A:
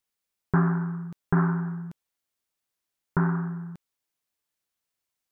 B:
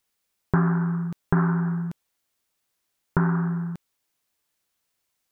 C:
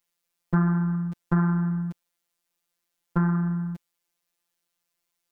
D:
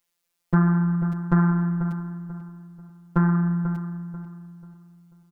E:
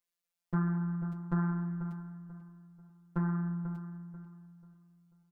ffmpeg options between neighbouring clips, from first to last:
-af "acompressor=threshold=-30dB:ratio=2,volume=7.5dB"
-af "afftfilt=real='hypot(re,im)*cos(PI*b)':imag='0':win_size=1024:overlap=0.75"
-filter_complex "[0:a]asplit=2[a][b];[b]adelay=489,lowpass=f=1.8k:p=1,volume=-10dB,asplit=2[c][d];[d]adelay=489,lowpass=f=1.8k:p=1,volume=0.35,asplit=2[e][f];[f]adelay=489,lowpass=f=1.8k:p=1,volume=0.35,asplit=2[g][h];[h]adelay=489,lowpass=f=1.8k:p=1,volume=0.35[i];[a][c][e][g][i]amix=inputs=5:normalize=0,volume=3dB"
-af "flanger=delay=9.8:depth=2.1:regen=-54:speed=0.41:shape=sinusoidal,volume=-8.5dB"

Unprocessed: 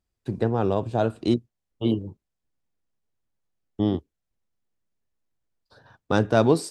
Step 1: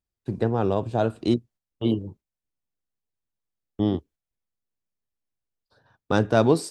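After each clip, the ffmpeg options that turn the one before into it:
-af "agate=range=-8dB:threshold=-48dB:ratio=16:detection=peak"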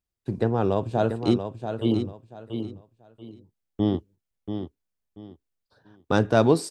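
-af "aecho=1:1:685|1370|2055:0.398|0.0995|0.0249"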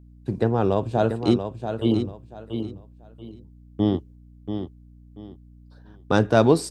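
-af "aeval=exprs='val(0)+0.00355*(sin(2*PI*60*n/s)+sin(2*PI*2*60*n/s)/2+sin(2*PI*3*60*n/s)/3+sin(2*PI*4*60*n/s)/4+sin(2*PI*5*60*n/s)/5)':c=same,volume=2dB"

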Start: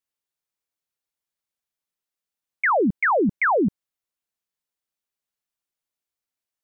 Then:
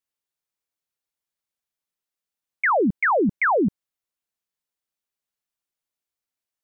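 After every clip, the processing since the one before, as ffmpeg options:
-af anull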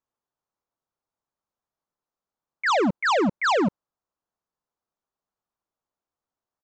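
-af "highshelf=f=1.6k:t=q:w=1.5:g=-12,aresample=16000,asoftclip=type=hard:threshold=-25dB,aresample=44100,volume=5.5dB"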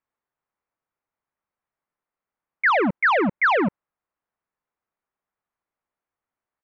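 -af "lowpass=f=2.1k:t=q:w=2.3"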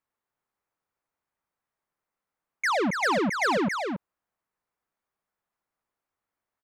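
-af "asoftclip=type=tanh:threshold=-23dB,aecho=1:1:278:0.531"

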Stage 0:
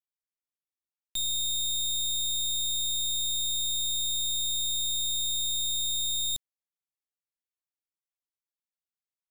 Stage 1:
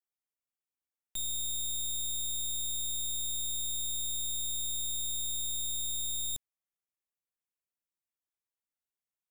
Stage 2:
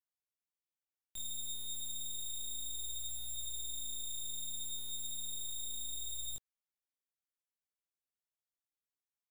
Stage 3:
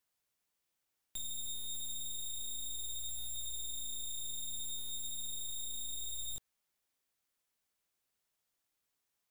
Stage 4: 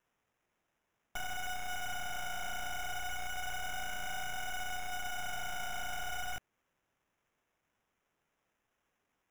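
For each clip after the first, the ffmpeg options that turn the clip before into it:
-af "equalizer=f=4.3k:w=2.5:g=-12.5,volume=-2dB"
-af "flanger=delay=18:depth=7.9:speed=0.31,volume=-4dB"
-af "alimiter=level_in=20dB:limit=-24dB:level=0:latency=1,volume=-20dB,volume=10.5dB"
-af "acrusher=samples=10:mix=1:aa=0.000001,volume=2dB"

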